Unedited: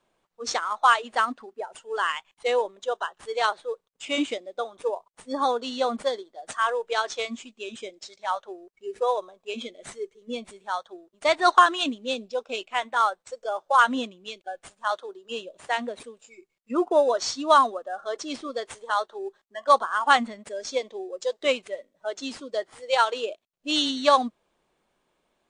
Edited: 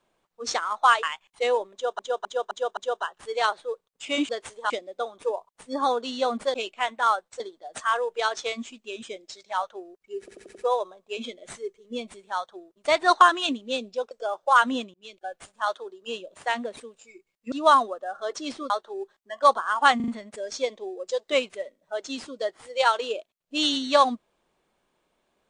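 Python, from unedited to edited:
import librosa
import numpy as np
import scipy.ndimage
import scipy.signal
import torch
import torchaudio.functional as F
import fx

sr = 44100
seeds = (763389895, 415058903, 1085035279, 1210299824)

y = fx.edit(x, sr, fx.cut(start_s=1.03, length_s=1.04),
    fx.repeat(start_s=2.77, length_s=0.26, count=5),
    fx.stutter(start_s=8.92, slice_s=0.09, count=5),
    fx.move(start_s=12.48, length_s=0.86, to_s=6.13),
    fx.fade_in_span(start_s=14.17, length_s=0.28),
    fx.cut(start_s=16.75, length_s=0.61),
    fx.move(start_s=18.54, length_s=0.41, to_s=4.29),
    fx.stutter(start_s=20.21, slice_s=0.04, count=4), tone=tone)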